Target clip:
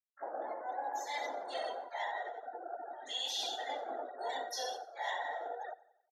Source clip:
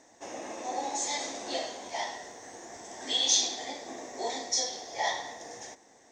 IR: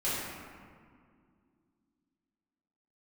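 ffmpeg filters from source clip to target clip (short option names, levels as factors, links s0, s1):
-filter_complex "[0:a]highshelf=f=6500:g=-11.5,afftfilt=real='re*gte(hypot(re,im),0.0178)':imag='im*gte(hypot(re,im),0.0178)':win_size=1024:overlap=0.75,acrossover=split=510 4400:gain=0.0708 1 0.112[s0][s1][s2];[s0][s1][s2]amix=inputs=3:normalize=0,aecho=1:1:90|180|270|360:0.0944|0.05|0.0265|0.0141,asplit=3[s3][s4][s5];[s4]asetrate=37084,aresample=44100,atempo=1.18921,volume=0.158[s6];[s5]asetrate=88200,aresample=44100,atempo=0.5,volume=0.158[s7];[s3][s6][s7]amix=inputs=3:normalize=0,areverse,acompressor=threshold=0.00447:ratio=6,areverse,volume=3.35"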